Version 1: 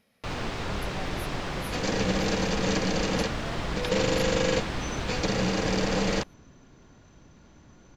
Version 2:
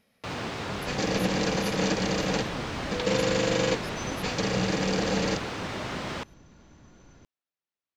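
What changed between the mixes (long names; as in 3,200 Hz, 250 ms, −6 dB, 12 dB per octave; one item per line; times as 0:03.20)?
first sound: add high-pass filter 100 Hz
second sound: entry −0.85 s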